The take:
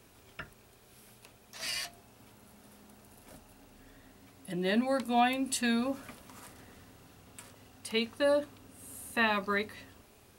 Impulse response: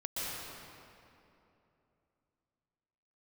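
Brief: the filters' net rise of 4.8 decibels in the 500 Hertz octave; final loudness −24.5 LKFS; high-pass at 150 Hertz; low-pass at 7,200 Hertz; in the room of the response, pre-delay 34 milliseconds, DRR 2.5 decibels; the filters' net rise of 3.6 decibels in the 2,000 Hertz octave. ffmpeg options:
-filter_complex "[0:a]highpass=150,lowpass=7200,equalizer=frequency=500:width_type=o:gain=5.5,equalizer=frequency=2000:width_type=o:gain=4,asplit=2[link_01][link_02];[1:a]atrim=start_sample=2205,adelay=34[link_03];[link_02][link_03]afir=irnorm=-1:irlink=0,volume=-7dB[link_04];[link_01][link_04]amix=inputs=2:normalize=0,volume=3dB"

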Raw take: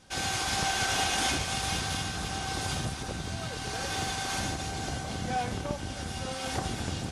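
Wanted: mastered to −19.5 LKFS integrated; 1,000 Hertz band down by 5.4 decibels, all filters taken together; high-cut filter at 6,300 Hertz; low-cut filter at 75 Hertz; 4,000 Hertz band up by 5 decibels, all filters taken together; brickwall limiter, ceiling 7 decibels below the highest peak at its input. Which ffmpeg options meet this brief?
ffmpeg -i in.wav -af "highpass=75,lowpass=6300,equalizer=frequency=1000:width_type=o:gain=-8.5,equalizer=frequency=4000:width_type=o:gain=7.5,volume=12dB,alimiter=limit=-10.5dB:level=0:latency=1" out.wav

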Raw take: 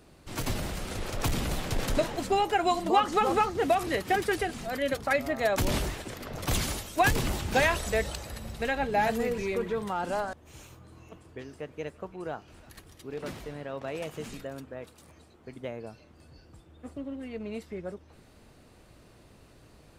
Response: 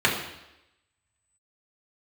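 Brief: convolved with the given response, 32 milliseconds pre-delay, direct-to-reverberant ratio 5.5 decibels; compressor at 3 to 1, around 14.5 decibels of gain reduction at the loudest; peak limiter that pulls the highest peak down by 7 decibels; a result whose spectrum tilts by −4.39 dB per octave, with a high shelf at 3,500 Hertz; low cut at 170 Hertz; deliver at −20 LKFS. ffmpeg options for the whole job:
-filter_complex "[0:a]highpass=170,highshelf=frequency=3500:gain=-4,acompressor=threshold=-40dB:ratio=3,alimiter=level_in=8.5dB:limit=-24dB:level=0:latency=1,volume=-8.5dB,asplit=2[link_01][link_02];[1:a]atrim=start_sample=2205,adelay=32[link_03];[link_02][link_03]afir=irnorm=-1:irlink=0,volume=-23dB[link_04];[link_01][link_04]amix=inputs=2:normalize=0,volume=22.5dB"

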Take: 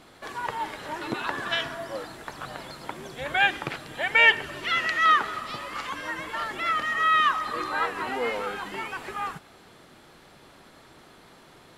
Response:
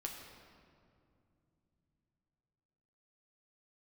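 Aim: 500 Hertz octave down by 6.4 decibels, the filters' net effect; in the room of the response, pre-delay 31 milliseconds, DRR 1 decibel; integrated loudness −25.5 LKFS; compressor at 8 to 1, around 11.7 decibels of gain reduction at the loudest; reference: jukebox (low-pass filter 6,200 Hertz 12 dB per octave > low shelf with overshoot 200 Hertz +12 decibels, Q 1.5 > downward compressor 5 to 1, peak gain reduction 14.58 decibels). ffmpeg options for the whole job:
-filter_complex "[0:a]equalizer=frequency=500:width_type=o:gain=-6,acompressor=threshold=-25dB:ratio=8,asplit=2[link_01][link_02];[1:a]atrim=start_sample=2205,adelay=31[link_03];[link_02][link_03]afir=irnorm=-1:irlink=0,volume=0dB[link_04];[link_01][link_04]amix=inputs=2:normalize=0,lowpass=6200,lowshelf=frequency=200:width_type=q:width=1.5:gain=12,acompressor=threshold=-36dB:ratio=5,volume=13dB"

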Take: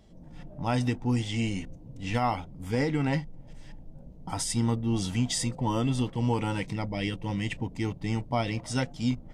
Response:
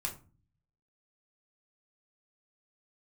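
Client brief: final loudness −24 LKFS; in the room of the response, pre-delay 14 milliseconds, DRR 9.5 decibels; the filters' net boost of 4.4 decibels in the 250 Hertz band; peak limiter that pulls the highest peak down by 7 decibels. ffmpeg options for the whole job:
-filter_complex "[0:a]equalizer=frequency=250:width_type=o:gain=5,alimiter=limit=-20dB:level=0:latency=1,asplit=2[link_01][link_02];[1:a]atrim=start_sample=2205,adelay=14[link_03];[link_02][link_03]afir=irnorm=-1:irlink=0,volume=-11dB[link_04];[link_01][link_04]amix=inputs=2:normalize=0,volume=6dB"

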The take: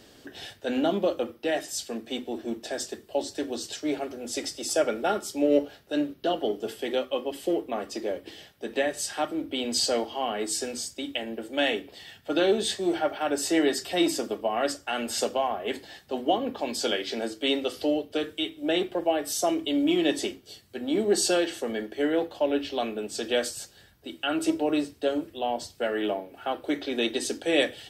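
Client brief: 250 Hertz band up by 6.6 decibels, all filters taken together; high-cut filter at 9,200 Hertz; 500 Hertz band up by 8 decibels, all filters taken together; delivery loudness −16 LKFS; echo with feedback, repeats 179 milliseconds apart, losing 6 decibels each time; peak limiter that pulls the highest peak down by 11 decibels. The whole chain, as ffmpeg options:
ffmpeg -i in.wav -af "lowpass=9200,equalizer=frequency=250:width_type=o:gain=5,equalizer=frequency=500:width_type=o:gain=8.5,alimiter=limit=-13.5dB:level=0:latency=1,aecho=1:1:179|358|537|716|895|1074:0.501|0.251|0.125|0.0626|0.0313|0.0157,volume=7.5dB" out.wav

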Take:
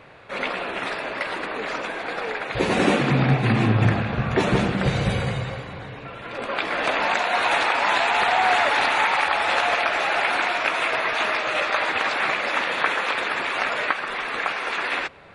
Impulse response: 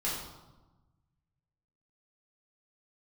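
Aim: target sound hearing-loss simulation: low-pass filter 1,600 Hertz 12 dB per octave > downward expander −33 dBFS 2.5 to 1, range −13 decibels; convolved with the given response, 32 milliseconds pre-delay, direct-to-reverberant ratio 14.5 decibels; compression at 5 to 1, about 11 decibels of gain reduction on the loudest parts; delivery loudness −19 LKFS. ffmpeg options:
-filter_complex "[0:a]acompressor=threshold=-27dB:ratio=5,asplit=2[link_01][link_02];[1:a]atrim=start_sample=2205,adelay=32[link_03];[link_02][link_03]afir=irnorm=-1:irlink=0,volume=-20.5dB[link_04];[link_01][link_04]amix=inputs=2:normalize=0,lowpass=1600,agate=range=-13dB:threshold=-33dB:ratio=2.5,volume=13dB"

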